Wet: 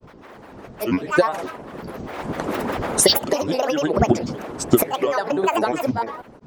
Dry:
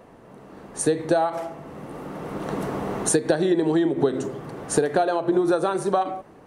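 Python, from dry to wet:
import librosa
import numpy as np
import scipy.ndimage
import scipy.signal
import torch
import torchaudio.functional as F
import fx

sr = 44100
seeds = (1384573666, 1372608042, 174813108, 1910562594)

y = fx.hpss(x, sr, part='harmonic', gain_db=-10)
y = fx.granulator(y, sr, seeds[0], grain_ms=100.0, per_s=20.0, spray_ms=100.0, spread_st=12)
y = F.gain(torch.from_numpy(y), 8.5).numpy()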